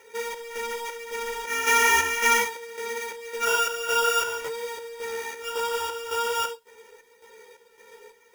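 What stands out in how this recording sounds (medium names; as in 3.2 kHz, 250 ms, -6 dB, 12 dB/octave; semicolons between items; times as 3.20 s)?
aliases and images of a low sample rate 4.2 kHz, jitter 0%; chopped level 1.8 Hz, depth 60%, duty 60%; a quantiser's noise floor 12-bit, dither triangular; a shimmering, thickened sound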